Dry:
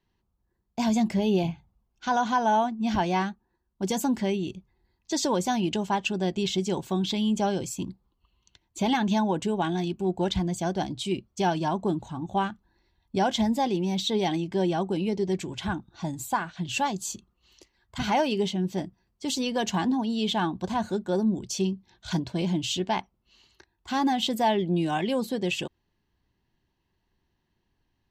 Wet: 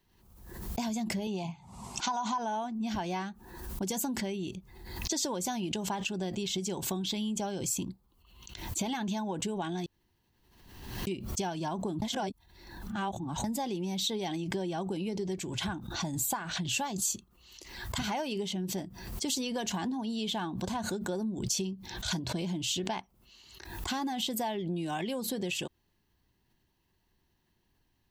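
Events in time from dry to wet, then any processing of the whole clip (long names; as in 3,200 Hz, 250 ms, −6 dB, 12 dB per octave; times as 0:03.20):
0:01.27–0:02.38: loudspeaker in its box 160–9,100 Hz, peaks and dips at 320 Hz −8 dB, 490 Hz −8 dB, 970 Hz +8 dB, 1,600 Hz −10 dB, 3,200 Hz −3 dB, 7,800 Hz +6 dB
0:09.86–0:11.07: fill with room tone
0:12.02–0:13.44: reverse
whole clip: downward compressor 5 to 1, threshold −32 dBFS; high-shelf EQ 7,100 Hz +11.5 dB; background raised ahead of every attack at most 55 dB per second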